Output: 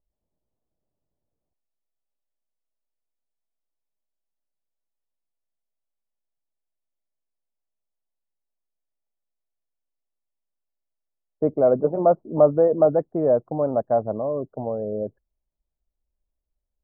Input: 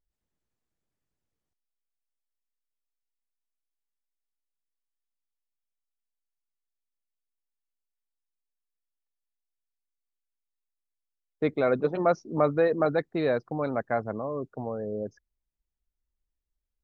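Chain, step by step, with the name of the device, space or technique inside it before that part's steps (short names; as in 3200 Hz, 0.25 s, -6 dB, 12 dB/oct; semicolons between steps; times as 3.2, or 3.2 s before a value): under water (LPF 950 Hz 24 dB/oct; bell 610 Hz +7 dB 0.36 oct); gain +3.5 dB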